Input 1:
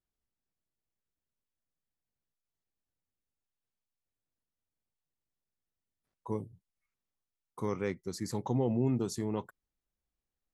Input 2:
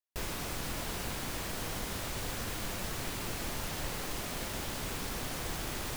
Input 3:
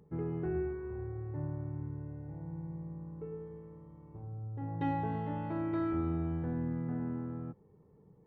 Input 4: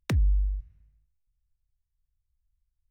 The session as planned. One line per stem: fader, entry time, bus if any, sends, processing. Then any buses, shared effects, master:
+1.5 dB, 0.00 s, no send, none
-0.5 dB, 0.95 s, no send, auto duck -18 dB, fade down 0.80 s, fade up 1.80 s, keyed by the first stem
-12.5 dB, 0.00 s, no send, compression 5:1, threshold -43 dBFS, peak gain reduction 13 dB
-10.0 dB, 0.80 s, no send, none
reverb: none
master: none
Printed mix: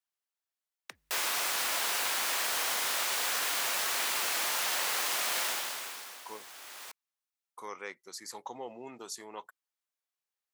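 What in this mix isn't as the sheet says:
stem 2 -0.5 dB -> +9.5 dB; stem 3: muted; master: extra high-pass 870 Hz 12 dB/octave

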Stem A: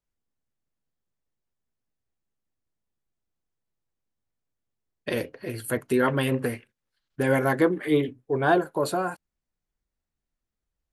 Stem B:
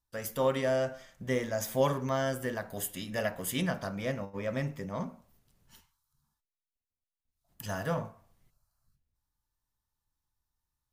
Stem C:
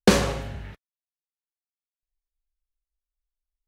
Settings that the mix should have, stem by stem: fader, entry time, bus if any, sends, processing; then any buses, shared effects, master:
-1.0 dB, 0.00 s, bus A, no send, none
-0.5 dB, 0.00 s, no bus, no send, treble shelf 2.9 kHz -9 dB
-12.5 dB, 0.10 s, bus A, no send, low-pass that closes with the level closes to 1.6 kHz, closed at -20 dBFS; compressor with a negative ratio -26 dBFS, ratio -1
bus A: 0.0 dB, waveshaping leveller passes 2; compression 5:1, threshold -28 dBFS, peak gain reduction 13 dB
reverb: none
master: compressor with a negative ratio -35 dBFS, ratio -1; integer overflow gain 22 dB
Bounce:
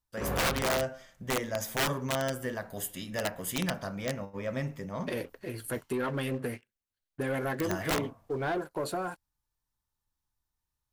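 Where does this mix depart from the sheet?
stem A -1.0 dB -> -12.5 dB; stem B: missing treble shelf 2.9 kHz -9 dB; master: missing compressor with a negative ratio -35 dBFS, ratio -1

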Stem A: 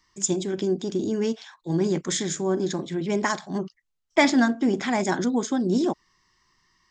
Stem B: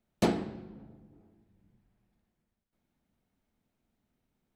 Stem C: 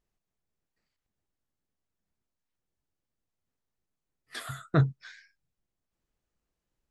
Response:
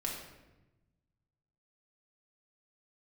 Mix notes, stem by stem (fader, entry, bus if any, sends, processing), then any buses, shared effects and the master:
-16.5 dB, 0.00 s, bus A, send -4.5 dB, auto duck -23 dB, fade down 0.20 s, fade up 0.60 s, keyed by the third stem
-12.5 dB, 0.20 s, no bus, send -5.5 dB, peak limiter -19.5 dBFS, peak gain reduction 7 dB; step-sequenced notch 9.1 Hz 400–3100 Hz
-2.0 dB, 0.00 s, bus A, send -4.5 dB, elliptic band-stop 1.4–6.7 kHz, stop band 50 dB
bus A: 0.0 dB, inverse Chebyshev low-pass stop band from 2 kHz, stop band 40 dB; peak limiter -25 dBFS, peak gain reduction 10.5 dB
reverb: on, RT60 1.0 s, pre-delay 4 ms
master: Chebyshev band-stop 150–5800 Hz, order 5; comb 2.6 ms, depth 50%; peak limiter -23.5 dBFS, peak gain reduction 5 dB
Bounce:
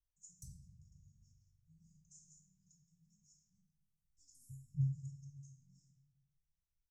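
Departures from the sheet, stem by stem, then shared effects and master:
stem A -16.5 dB -> -28.0 dB; stem C -2.0 dB -> -13.0 dB

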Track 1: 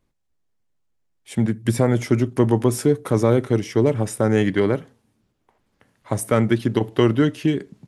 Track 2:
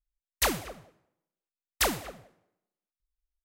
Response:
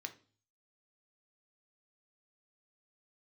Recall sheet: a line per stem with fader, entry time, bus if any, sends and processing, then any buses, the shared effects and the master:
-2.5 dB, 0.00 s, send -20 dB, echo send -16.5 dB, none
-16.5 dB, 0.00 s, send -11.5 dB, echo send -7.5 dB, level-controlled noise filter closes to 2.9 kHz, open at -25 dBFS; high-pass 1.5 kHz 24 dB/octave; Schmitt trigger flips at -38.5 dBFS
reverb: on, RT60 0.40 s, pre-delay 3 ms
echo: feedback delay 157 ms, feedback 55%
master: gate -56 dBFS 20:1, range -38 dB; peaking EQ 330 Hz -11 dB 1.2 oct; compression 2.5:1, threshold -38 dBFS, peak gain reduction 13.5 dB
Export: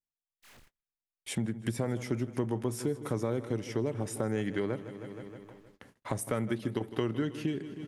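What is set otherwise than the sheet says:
stem 1 -2.5 dB -> +4.0 dB; master: missing peaking EQ 330 Hz -11 dB 1.2 oct

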